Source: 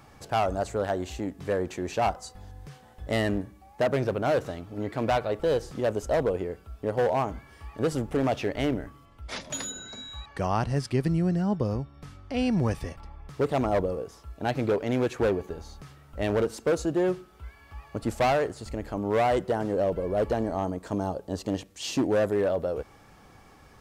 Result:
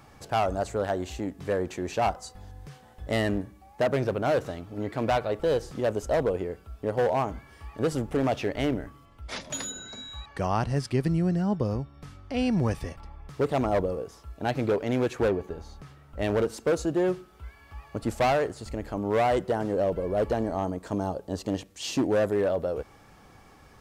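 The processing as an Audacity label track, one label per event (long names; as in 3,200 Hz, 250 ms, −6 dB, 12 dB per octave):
15.280000	16.190000	high-shelf EQ 3,800 Hz −6 dB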